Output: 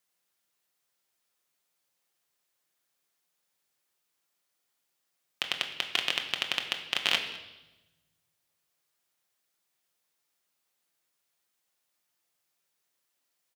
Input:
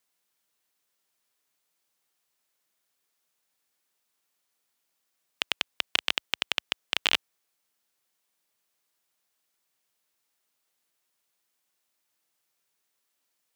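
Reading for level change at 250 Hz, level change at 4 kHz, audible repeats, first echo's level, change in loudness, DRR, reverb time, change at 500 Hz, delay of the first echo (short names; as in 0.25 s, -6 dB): -1.0 dB, -1.0 dB, 1, -21.0 dB, -1.0 dB, 3.5 dB, 1.0 s, -0.5 dB, 0.207 s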